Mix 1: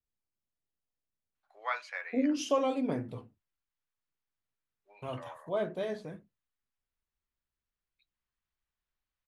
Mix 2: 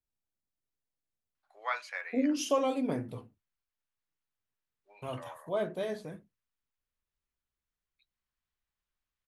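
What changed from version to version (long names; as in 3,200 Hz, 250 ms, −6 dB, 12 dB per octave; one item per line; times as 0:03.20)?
master: remove high-frequency loss of the air 50 metres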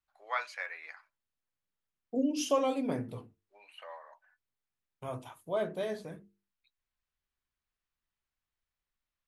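first voice: entry −1.35 s
second voice: add mains-hum notches 50/100/150/200/250/300/350/400/450 Hz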